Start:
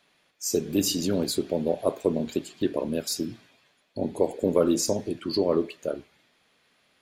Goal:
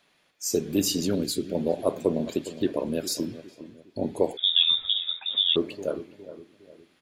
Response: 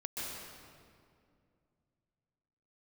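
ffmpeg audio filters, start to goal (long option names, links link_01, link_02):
-filter_complex "[0:a]asettb=1/sr,asplit=3[link_01][link_02][link_03];[link_01]atrim=end=1.154[link_04];[link_02]atrim=start=1.15:end=1.55,asetpts=PTS-STARTPTS,afade=type=in:duration=0.004:curve=qsin,afade=type=out:start_time=0.396:duration=0.004:curve=qsin,equalizer=frequency=880:width_type=o:width=1.1:gain=-14[link_05];[link_03]atrim=start=1.546[link_06];[link_04][link_05]acrossfade=duration=0.004:curve1=hsin:curve2=qsin[link_07];[link_07][link_06]acrossfade=duration=0.004:curve1=qsin:curve2=hsin,asplit=2[link_08][link_09];[link_09]adelay=410,lowpass=frequency=930:poles=1,volume=-13.5dB,asplit=2[link_10][link_11];[link_11]adelay=410,lowpass=frequency=930:poles=1,volume=0.42,asplit=2[link_12][link_13];[link_13]adelay=410,lowpass=frequency=930:poles=1,volume=0.42,asplit=2[link_14][link_15];[link_15]adelay=410,lowpass=frequency=930:poles=1,volume=0.42[link_16];[link_08][link_10][link_12][link_14][link_16]amix=inputs=5:normalize=0,asettb=1/sr,asplit=3[link_17][link_18][link_19];[link_17]atrim=end=4.374[link_20];[link_18]atrim=start=4.37:end=5.56,asetpts=PTS-STARTPTS,afade=type=in:duration=0.004:curve=qsin,afade=type=out:start_time=1.186:duration=0.004:curve=qsin,lowpass=frequency=3300:width_type=q:width=0.5098,lowpass=frequency=3300:width_type=q:width=0.6013,lowpass=frequency=3300:width_type=q:width=0.9,lowpass=frequency=3300:width_type=q:width=2.563,afreqshift=-3900[link_21];[link_19]atrim=start=5.556[link_22];[link_20][link_21]acrossfade=duration=0.004:curve1=hsin:curve2=qsin[link_23];[link_23][link_22]acrossfade=duration=0.004:curve1=qsin:curve2=hsin"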